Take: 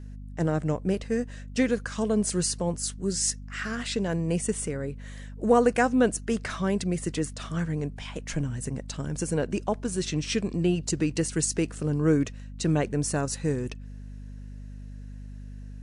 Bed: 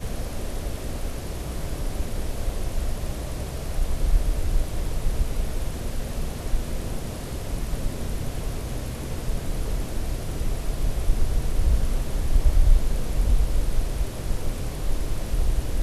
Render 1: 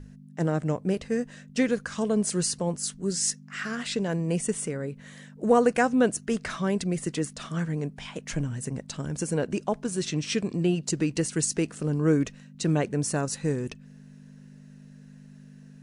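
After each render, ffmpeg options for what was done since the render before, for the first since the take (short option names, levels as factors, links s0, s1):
-af "bandreject=f=50:t=h:w=6,bandreject=f=100:t=h:w=6"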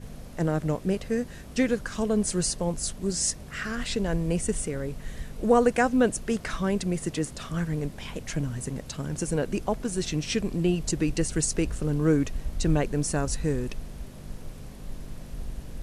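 -filter_complex "[1:a]volume=0.224[s0];[0:a][s0]amix=inputs=2:normalize=0"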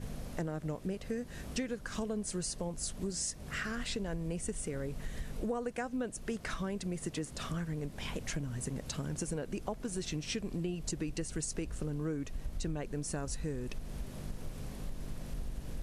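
-af "acompressor=threshold=0.02:ratio=6"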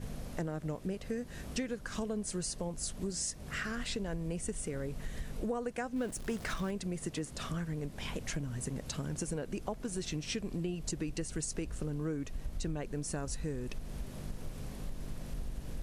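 -filter_complex "[0:a]asettb=1/sr,asplit=3[s0][s1][s2];[s0]atrim=end=5.964[s3];[s1]atrim=start=5.96:end=6.71,asetpts=PTS-STARTPTS,afade=t=in:d=0.004:c=qsin,afade=t=out:st=0.746:d=0.004:c=qsin,aeval=exprs='val(0)+0.5*0.00631*sgn(val(0))':c=same[s4];[s2]atrim=start=6.706[s5];[s3][s4]acrossfade=d=0.004:c1=hsin:c2=qsin[s6];[s6][s5]acrossfade=d=0.004:c1=qsin:c2=hsin"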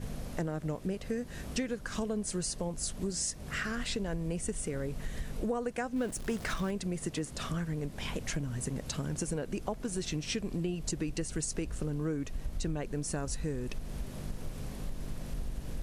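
-af "volume=1.33"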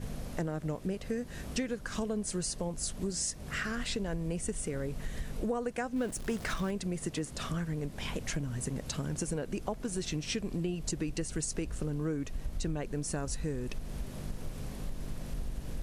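-af anull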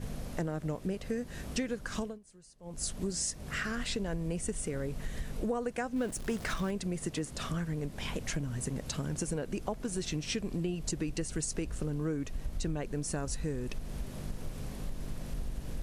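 -filter_complex "[0:a]asplit=3[s0][s1][s2];[s0]atrim=end=2.19,asetpts=PTS-STARTPTS,afade=t=out:st=1.98:d=0.21:silence=0.0707946[s3];[s1]atrim=start=2.19:end=2.61,asetpts=PTS-STARTPTS,volume=0.0708[s4];[s2]atrim=start=2.61,asetpts=PTS-STARTPTS,afade=t=in:d=0.21:silence=0.0707946[s5];[s3][s4][s5]concat=n=3:v=0:a=1"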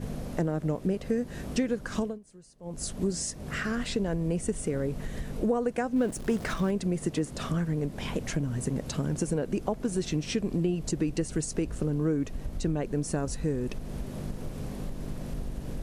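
-af "equalizer=f=300:w=0.32:g=7"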